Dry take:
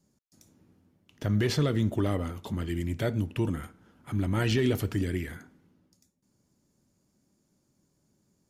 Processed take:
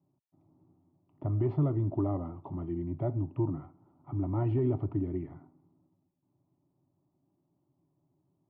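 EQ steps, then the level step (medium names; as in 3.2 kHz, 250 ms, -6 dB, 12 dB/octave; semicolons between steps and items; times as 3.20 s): high-pass 57 Hz; low-pass 1.4 kHz 24 dB/octave; static phaser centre 320 Hz, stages 8; 0.0 dB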